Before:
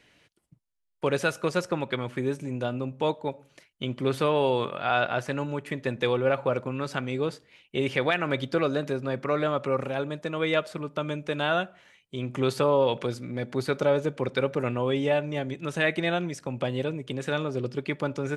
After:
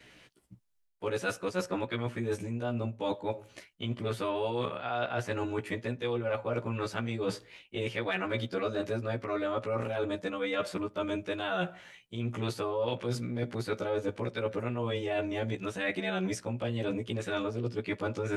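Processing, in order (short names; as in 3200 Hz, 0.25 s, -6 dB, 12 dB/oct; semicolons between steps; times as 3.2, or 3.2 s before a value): short-time reversal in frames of 33 ms; reverse; compressor 6:1, threshold -37 dBFS, peak gain reduction 15.5 dB; reverse; gain +7.5 dB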